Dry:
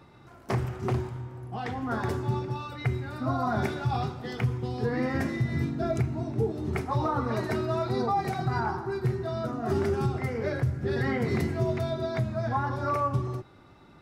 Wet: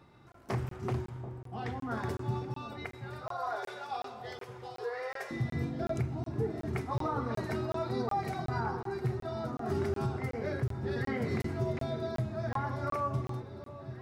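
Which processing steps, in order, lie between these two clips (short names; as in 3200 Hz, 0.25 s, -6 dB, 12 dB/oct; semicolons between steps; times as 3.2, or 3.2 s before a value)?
2.84–5.31 brick-wall FIR high-pass 380 Hz; echo with dull and thin repeats by turns 0.735 s, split 860 Hz, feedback 67%, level -11 dB; crackling interface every 0.37 s, samples 1024, zero, from 0.32; gain -5.5 dB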